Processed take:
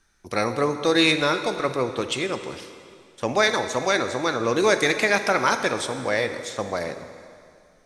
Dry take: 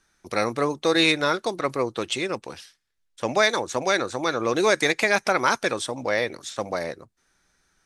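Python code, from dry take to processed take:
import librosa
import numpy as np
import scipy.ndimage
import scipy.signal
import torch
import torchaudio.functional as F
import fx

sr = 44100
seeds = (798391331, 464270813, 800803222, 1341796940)

y = fx.low_shelf(x, sr, hz=82.0, db=8.5)
y = fx.rev_plate(y, sr, seeds[0], rt60_s=2.3, hf_ratio=0.95, predelay_ms=0, drr_db=8.0)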